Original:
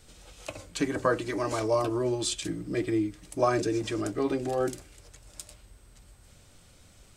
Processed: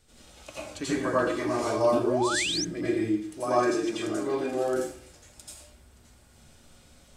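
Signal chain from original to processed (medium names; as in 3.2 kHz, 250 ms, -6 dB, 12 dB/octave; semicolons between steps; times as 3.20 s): plate-style reverb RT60 0.55 s, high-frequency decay 0.8×, pre-delay 75 ms, DRR -9 dB; 1.92–2.65 s: painted sound rise 210–6500 Hz -22 dBFS; 3.23–4.74 s: bass shelf 150 Hz -8 dB; trim -8 dB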